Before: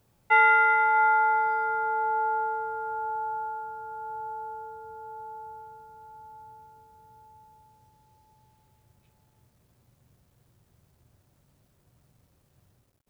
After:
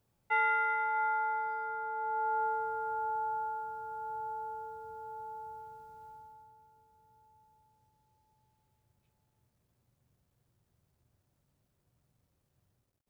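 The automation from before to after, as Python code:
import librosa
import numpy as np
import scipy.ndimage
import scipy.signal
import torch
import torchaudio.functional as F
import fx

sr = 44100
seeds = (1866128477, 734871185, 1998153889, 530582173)

y = fx.gain(x, sr, db=fx.line((1.93, -10.0), (2.46, -3.0), (6.09, -3.0), (6.52, -11.0)))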